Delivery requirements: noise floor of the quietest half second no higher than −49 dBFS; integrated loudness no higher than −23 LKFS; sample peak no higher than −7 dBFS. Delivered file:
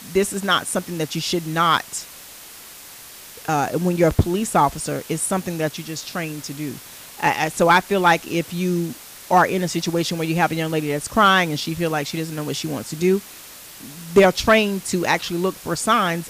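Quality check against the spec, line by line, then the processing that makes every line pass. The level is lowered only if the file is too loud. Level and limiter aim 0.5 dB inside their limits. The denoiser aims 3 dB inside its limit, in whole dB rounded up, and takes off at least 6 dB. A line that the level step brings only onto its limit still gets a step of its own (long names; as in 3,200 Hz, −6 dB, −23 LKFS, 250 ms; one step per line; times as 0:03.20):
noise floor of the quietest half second −41 dBFS: out of spec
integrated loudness −20.5 LKFS: out of spec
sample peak −5.0 dBFS: out of spec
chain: broadband denoise 8 dB, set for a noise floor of −41 dBFS
level −3 dB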